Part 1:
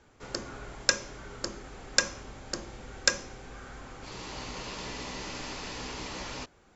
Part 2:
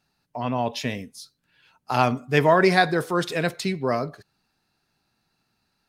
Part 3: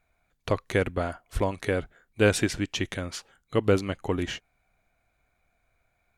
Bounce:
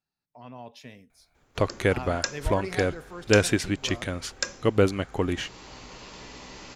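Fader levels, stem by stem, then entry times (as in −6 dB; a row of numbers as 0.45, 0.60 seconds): −5.0, −17.5, +1.5 decibels; 1.35, 0.00, 1.10 seconds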